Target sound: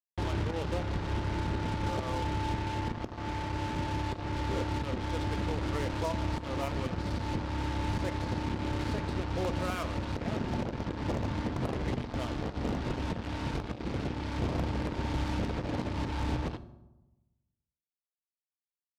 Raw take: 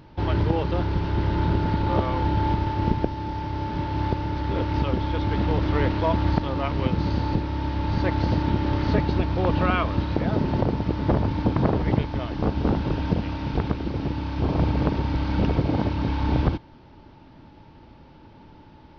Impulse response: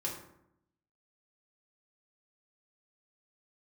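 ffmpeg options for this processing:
-filter_complex "[0:a]equalizer=f=540:w=2.6:g=2.5,alimiter=limit=-17dB:level=0:latency=1:release=237,acrusher=bits=4:mix=0:aa=0.5,asplit=2[a][b];[1:a]atrim=start_sample=2205,asetrate=29988,aresample=44100[c];[b][c]afir=irnorm=-1:irlink=0,volume=-14dB[d];[a][d]amix=inputs=2:normalize=0,volume=-7.5dB"

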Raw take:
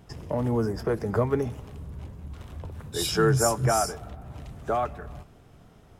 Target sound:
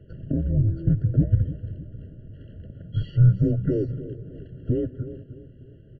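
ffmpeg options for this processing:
-filter_complex "[0:a]asettb=1/sr,asplit=3[a][b][c];[a]atrim=end=0.494[d];[b]atrim=start=0.49:end=0.91,asetpts=PTS-STARTPTS,afade=t=in:d=0.004:c=qsin,afade=t=out:st=0.416:d=0.004:c=qsin,aeval=exprs='val(0)+0.0112*sin(2*PI*650*n/s)':c=same[e];[c]atrim=start=0.906[f];[d][e]acrossfade=d=0.004:c1=hsin:c2=qsin[g];[g][f]acrossfade=d=0.004:c1=qsin:c2=hsin,asplit=2[h][i];[i]acompressor=threshold=-38dB:ratio=6,volume=3dB[j];[h][j]amix=inputs=2:normalize=0,asettb=1/sr,asplit=3[k][l][m];[k]atrim=end=1.524[n];[l]atrim=start=1.52:end=2.67,asetpts=PTS-STARTPTS,afade=t=in:d=0.004:c=qsin,afade=t=out:st=1.146:d=0.004:c=qsin,aeval=exprs='0.0168*(abs(mod(val(0)/0.0168+3,4)-2)-1)':c=same[o];[m]atrim=start=2.666[p];[n][o]acrossfade=d=0.004:c1=hsin:c2=qsin[q];[q][p]acrossfade=d=0.004:c1=qsin:c2=hsin,highpass=f=220:t=q:w=0.5412,highpass=f=220:t=q:w=1.307,lowpass=f=3.1k:t=q:w=0.5176,lowpass=f=3.1k:t=q:w=0.7071,lowpass=f=3.1k:t=q:w=1.932,afreqshift=-320,equalizer=f=125:t=o:w=1:g=8,equalizer=f=1k:t=o:w=1:g=-12,equalizer=f=2k:t=o:w=1:g=-11,asplit=2[r][s];[s]adelay=303,lowpass=f=1.1k:p=1,volume=-13dB,asplit=2[t][u];[u]adelay=303,lowpass=f=1.1k:p=1,volume=0.4,asplit=2[v][w];[w]adelay=303,lowpass=f=1.1k:p=1,volume=0.4,asplit=2[x][y];[y]adelay=303,lowpass=f=1.1k:p=1,volume=0.4[z];[t][v][x][z]amix=inputs=4:normalize=0[aa];[r][aa]amix=inputs=2:normalize=0,afftfilt=real='re*eq(mod(floor(b*sr/1024/670),2),0)':imag='im*eq(mod(floor(b*sr/1024/670),2),0)':win_size=1024:overlap=0.75"

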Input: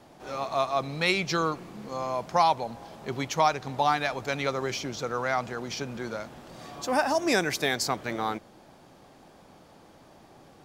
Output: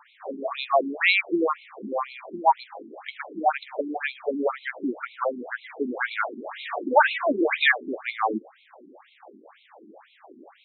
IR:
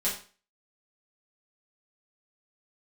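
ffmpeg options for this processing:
-filter_complex "[0:a]asettb=1/sr,asplit=3[a][b][c];[a]atrim=end=3.884[d];[b]atrim=start=3.88:end=4.37,asetpts=PTS-STARTPTS,afade=t=in:d=0.004:c=qsin,afade=t=out:st=0.486:d=0.004:c=qsin,adynamicequalizer=threshold=0.0141:dfrequency=1700:dqfactor=0.89:tfrequency=1700:tqfactor=0.89:attack=5:release=100:ratio=0.375:range=3:mode=cutabove:tftype=bell[e];[c]atrim=start=4.366[f];[d][e]acrossfade=d=0.004:c1=hsin:c2=qsin[g];[g][f]acrossfade=d=0.004:c1=qsin:c2=hsin,asettb=1/sr,asplit=3[h][i][j];[h]atrim=end=5.904[k];[i]atrim=start=5.9:end=7.72,asetpts=PTS-STARTPTS,afade=t=in:d=0.004:c=qsin,afade=t=out:st=1.816:d=0.004:c=qsin,asplit=2[l][m];[m]highpass=f=720:p=1,volume=17dB,asoftclip=type=tanh:threshold=-10dB[n];[l][n]amix=inputs=2:normalize=0,lowpass=f=2.6k:p=1,volume=-6dB[o];[j]atrim=start=7.716[p];[k][o]acrossfade=d=0.004:c1=hsin:c2=qsin[q];[q][p]acrossfade=d=0.004:c1=qsin:c2=hsin,asoftclip=type=tanh:threshold=-11dB,alimiter=level_in=15dB:limit=-1dB:release=50:level=0:latency=1,afftfilt=real='re*between(b*sr/1024,270*pow(3000/270,0.5+0.5*sin(2*PI*2*pts/sr))/1.41,270*pow(3000/270,0.5+0.5*sin(2*PI*2*pts/sr))*1.41)':imag='im*between(b*sr/1024,270*pow(3000/270,0.5+0.5*sin(2*PI*2*pts/sr))/1.41,270*pow(3000/270,0.5+0.5*sin(2*PI*2*pts/sr))*1.41)':win_size=1024:overlap=0.75,volume=-5dB"

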